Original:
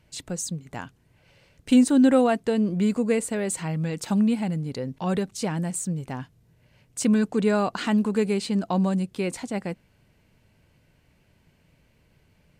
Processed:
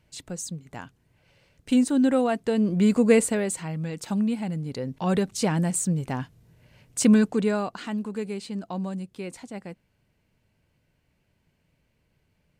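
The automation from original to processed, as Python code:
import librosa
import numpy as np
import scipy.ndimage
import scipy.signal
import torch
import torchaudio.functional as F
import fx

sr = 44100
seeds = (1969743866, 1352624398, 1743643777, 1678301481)

y = fx.gain(x, sr, db=fx.line((2.23, -3.5), (3.19, 6.0), (3.62, -3.5), (4.39, -3.5), (5.38, 3.5), (7.14, 3.5), (7.82, -8.0)))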